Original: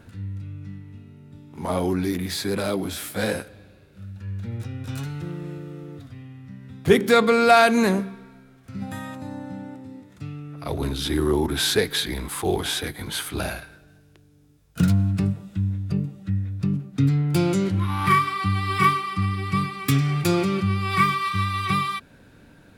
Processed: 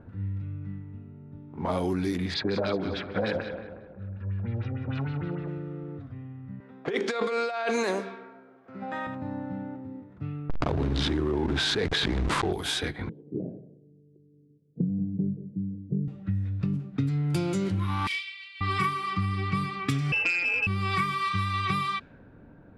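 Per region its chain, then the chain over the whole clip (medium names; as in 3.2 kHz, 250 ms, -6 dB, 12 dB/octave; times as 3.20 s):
2.34–5.48 s: distance through air 74 m + LFO low-pass sine 6.6 Hz 570–5200 Hz + feedback delay 182 ms, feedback 49%, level -12.5 dB
6.60–9.07 s: Chebyshev band-pass 450–7100 Hz + compressor with a negative ratio -25 dBFS
10.49–12.53 s: hysteresis with a dead band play -25.5 dBFS + distance through air 96 m + level flattener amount 100%
13.09–16.08 s: elliptic band-pass 130–460 Hz, stop band 50 dB + delay 182 ms -16.5 dB
18.07–18.61 s: steep high-pass 2.5 kHz + waveshaping leveller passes 1
20.12–20.67 s: comb 5.6 ms, depth 80% + frequency inversion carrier 2.8 kHz + transformer saturation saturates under 1.8 kHz
whole clip: level-controlled noise filter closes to 1 kHz, open at -18.5 dBFS; low-pass 11 kHz 12 dB/octave; compression, threshold -24 dBFS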